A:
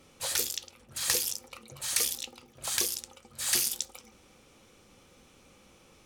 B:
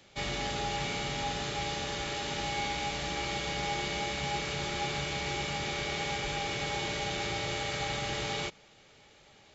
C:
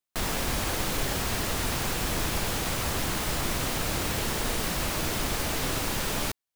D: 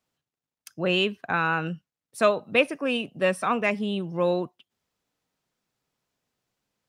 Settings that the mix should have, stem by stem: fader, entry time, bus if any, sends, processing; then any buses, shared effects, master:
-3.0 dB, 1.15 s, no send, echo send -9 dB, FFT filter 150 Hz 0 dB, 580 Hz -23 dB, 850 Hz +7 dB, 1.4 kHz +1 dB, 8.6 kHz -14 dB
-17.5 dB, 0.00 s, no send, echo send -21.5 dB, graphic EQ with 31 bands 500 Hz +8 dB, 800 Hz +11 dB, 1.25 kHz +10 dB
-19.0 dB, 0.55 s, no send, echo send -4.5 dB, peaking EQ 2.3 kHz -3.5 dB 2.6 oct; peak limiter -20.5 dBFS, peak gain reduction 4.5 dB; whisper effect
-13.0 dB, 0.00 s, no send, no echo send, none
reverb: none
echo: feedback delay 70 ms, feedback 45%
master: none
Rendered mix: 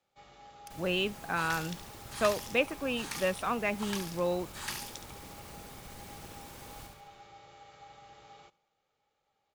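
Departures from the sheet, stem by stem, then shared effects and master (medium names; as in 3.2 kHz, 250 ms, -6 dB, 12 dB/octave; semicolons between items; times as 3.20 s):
stem B -17.5 dB -> -25.5 dB; stem D -13.0 dB -> -7.0 dB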